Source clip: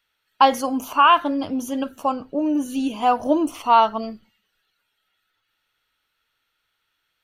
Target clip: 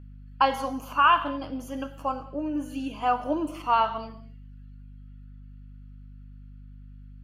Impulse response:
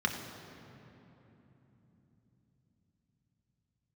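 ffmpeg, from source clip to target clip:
-filter_complex "[0:a]aeval=exprs='val(0)+0.0178*(sin(2*PI*50*n/s)+sin(2*PI*2*50*n/s)/2+sin(2*PI*3*50*n/s)/3+sin(2*PI*4*50*n/s)/4+sin(2*PI*5*50*n/s)/5)':c=same,asplit=2[a][b];[b]highpass=f=1.1k:p=1[c];[1:a]atrim=start_sample=2205,afade=t=out:st=0.28:d=0.01,atrim=end_sample=12789[d];[c][d]afir=irnorm=-1:irlink=0,volume=-7dB[e];[a][e]amix=inputs=2:normalize=0,volume=-8.5dB"

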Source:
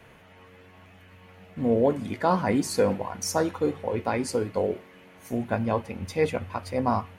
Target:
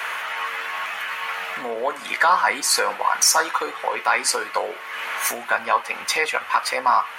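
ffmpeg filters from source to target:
-af "acompressor=threshold=-43dB:ratio=2.5,highpass=f=1.2k:t=q:w=1.8,apsyclip=34dB,volume=-8.5dB"

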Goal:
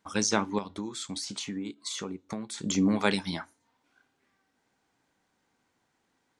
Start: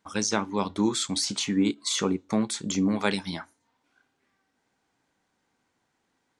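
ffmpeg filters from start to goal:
-filter_complex "[0:a]asettb=1/sr,asplit=3[a][b][c];[a]atrim=end=0.584[d];[b]atrim=start=0.58:end=2.58,asetpts=PTS-STARTPTS,afade=t=in:d=0.004:c=qsin,afade=t=out:st=1.996:d=0.004:c=qsin,acompressor=threshold=-34dB:ratio=5[e];[c]atrim=start=2.576[f];[d][e]acrossfade=d=0.004:c1=hsin:c2=qsin[g];[g][f]acrossfade=d=0.004:c1=qsin:c2=hsin"

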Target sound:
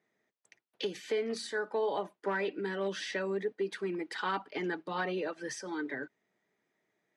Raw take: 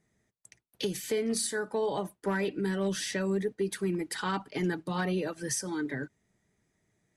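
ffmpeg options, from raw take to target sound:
-af "highpass=350,lowpass=3.7k"

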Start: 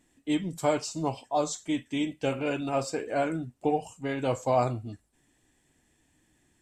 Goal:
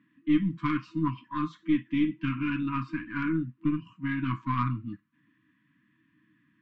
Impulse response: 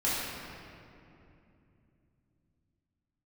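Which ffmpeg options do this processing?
-af "highpass=f=120:w=0.5412,highpass=f=120:w=1.3066,equalizer=f=130:t=q:w=4:g=4,equalizer=f=200:t=q:w=4:g=7,equalizer=f=340:t=q:w=4:g=7,equalizer=f=680:t=q:w=4:g=-5,equalizer=f=1.1k:t=q:w=4:g=6,equalizer=f=1.7k:t=q:w=4:g=4,lowpass=f=2.8k:w=0.5412,lowpass=f=2.8k:w=1.3066,aeval=exprs='0.251*(cos(1*acos(clip(val(0)/0.251,-1,1)))-cos(1*PI/2))+0.02*(cos(4*acos(clip(val(0)/0.251,-1,1)))-cos(4*PI/2))':c=same,afftfilt=real='re*(1-between(b*sr/4096,330,950))':imag='im*(1-between(b*sr/4096,330,950))':win_size=4096:overlap=0.75"

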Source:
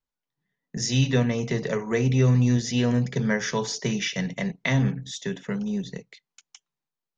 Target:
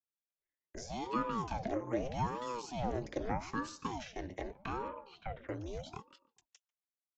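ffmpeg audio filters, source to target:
-filter_complex "[0:a]highpass=250,agate=range=-10dB:threshold=-46dB:ratio=16:detection=peak,asettb=1/sr,asplit=3[a][b][c];[a]atrim=end=4.884[d];[b]atrim=start=4.88:end=5.49,asetpts=PTS-STARTPTS,afade=t=in:d=0.004:c=qsin,afade=t=out:st=0.606:d=0.004:c=qsin,lowpass=f=2.4k:w=0.5412,lowpass=f=2.4k:w=1.3066[e];[c]atrim=start=5.486[f];[d][e]acrossfade=d=0.004:c1=hsin:c2=qsin[g];[g][f]acrossfade=d=0.004:c1=qsin:c2=hsin,acrossover=split=320|940[h][i][j];[h]alimiter=level_in=9dB:limit=-24dB:level=0:latency=1,volume=-9dB[k];[i]aphaser=in_gain=1:out_gain=1:delay=4.5:decay=0.35:speed=0.32:type=sinusoidal[l];[j]acompressor=threshold=-43dB:ratio=6[m];[k][l][m]amix=inputs=3:normalize=0,asplit=2[n][o];[o]adelay=143,lowpass=f=1.2k:p=1,volume=-20dB,asplit=2[p][q];[q]adelay=143,lowpass=f=1.2k:p=1,volume=0.42,asplit=2[r][s];[s]adelay=143,lowpass=f=1.2k:p=1,volume=0.42[t];[n][p][r][t]amix=inputs=4:normalize=0,aeval=exprs='val(0)*sin(2*PI*420*n/s+420*0.8/0.81*sin(2*PI*0.81*n/s))':c=same,volume=-4dB"

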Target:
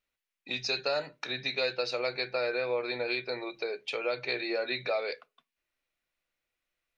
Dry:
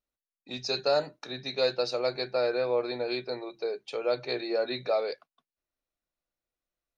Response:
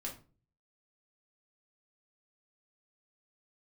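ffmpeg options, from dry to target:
-filter_complex "[0:a]equalizer=f=2.3k:t=o:w=1.4:g=12,acompressor=threshold=-34dB:ratio=2,asplit=2[a][b];[1:a]atrim=start_sample=2205,asetrate=79380,aresample=44100[c];[b][c]afir=irnorm=-1:irlink=0,volume=-9dB[d];[a][d]amix=inputs=2:normalize=0"

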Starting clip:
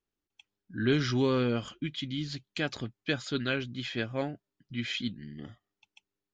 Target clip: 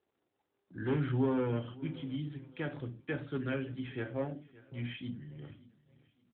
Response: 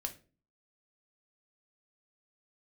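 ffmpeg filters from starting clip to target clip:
-filter_complex "[0:a]aemphasis=mode=reproduction:type=50kf,acrossover=split=2700[a][b];[b]acompressor=threshold=-53dB:ratio=4:attack=1:release=60[c];[a][c]amix=inputs=2:normalize=0,agate=range=-44dB:threshold=-52dB:ratio=16:detection=peak,acrossover=split=230|650|1700[d][e][f][g];[e]acompressor=mode=upward:threshold=-49dB:ratio=2.5[h];[d][h][f][g]amix=inputs=4:normalize=0,volume=24dB,asoftclip=hard,volume=-24dB,aecho=1:1:570|1140|1710:0.1|0.032|0.0102[i];[1:a]atrim=start_sample=2205,atrim=end_sample=6615[j];[i][j]afir=irnorm=-1:irlink=0,volume=-2.5dB" -ar 8000 -c:a libopencore_amrnb -b:a 12200

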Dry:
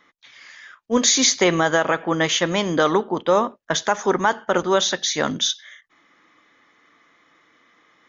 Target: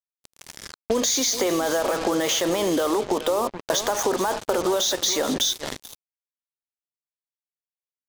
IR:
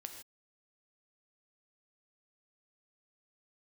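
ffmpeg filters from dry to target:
-filter_complex "[0:a]asplit=2[a][b];[b]acontrast=65,volume=-2.5dB[c];[a][c]amix=inputs=2:normalize=0,alimiter=limit=-9.5dB:level=0:latency=1:release=16,highpass=390,equalizer=f=590:w=0.32:g=4,asplit=2[d][e];[e]adelay=425,lowpass=f=4.1k:p=1,volume=-13dB,asplit=2[f][g];[g]adelay=425,lowpass=f=4.1k:p=1,volume=0.18[h];[d][f][h]amix=inputs=3:normalize=0,acrusher=bits=3:mix=0:aa=0.5,equalizer=f=1.7k:w=0.65:g=-9.5,acompressor=threshold=-29dB:ratio=5,volume=8dB"

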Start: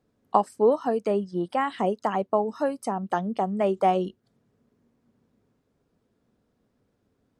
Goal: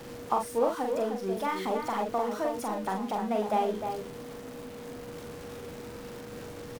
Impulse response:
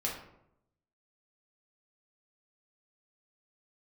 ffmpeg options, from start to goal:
-filter_complex "[0:a]aeval=exprs='val(0)+0.5*0.0251*sgn(val(0))':c=same,aeval=exprs='val(0)+0.0141*sin(2*PI*440*n/s)':c=same,asplit=2[a][b];[b]adelay=46,volume=-4dB[c];[a][c]amix=inputs=2:normalize=0,asplit=2[d][e];[e]adelay=332.4,volume=-7dB,highshelf=f=4k:g=-7.48[f];[d][f]amix=inputs=2:normalize=0,asetrate=48000,aresample=44100,volume=-8dB"

